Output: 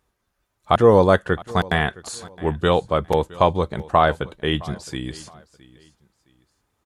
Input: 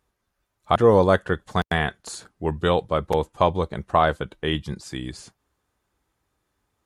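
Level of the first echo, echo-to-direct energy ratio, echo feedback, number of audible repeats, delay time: −21.0 dB, −20.5 dB, 29%, 2, 665 ms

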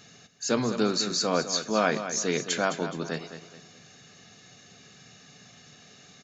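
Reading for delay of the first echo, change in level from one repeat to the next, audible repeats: 211 ms, −9.0 dB, 3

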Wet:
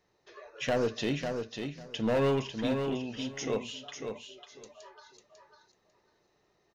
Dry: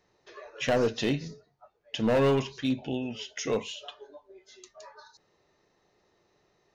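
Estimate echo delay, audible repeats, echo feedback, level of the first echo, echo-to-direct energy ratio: 547 ms, 2, 17%, −6.0 dB, −6.0 dB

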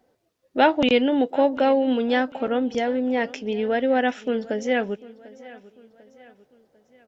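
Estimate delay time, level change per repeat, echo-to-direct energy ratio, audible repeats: 746 ms, −7.0 dB, −19.0 dB, 3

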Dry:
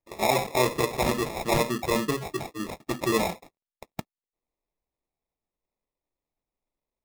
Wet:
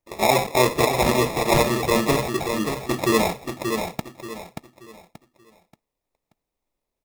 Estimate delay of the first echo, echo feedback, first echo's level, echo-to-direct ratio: 581 ms, 32%, −6.0 dB, −5.5 dB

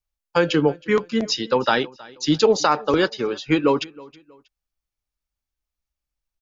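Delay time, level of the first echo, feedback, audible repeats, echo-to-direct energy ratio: 319 ms, −22.5 dB, 33%, 2, −22.0 dB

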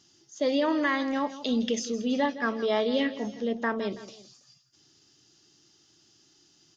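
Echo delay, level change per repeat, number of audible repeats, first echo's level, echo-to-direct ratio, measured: 164 ms, −7.0 dB, 2, −15.0 dB, −14.0 dB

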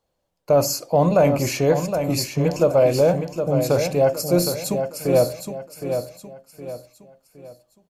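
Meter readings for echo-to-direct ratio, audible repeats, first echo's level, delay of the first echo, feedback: −7.0 dB, 4, −7.5 dB, 765 ms, 37%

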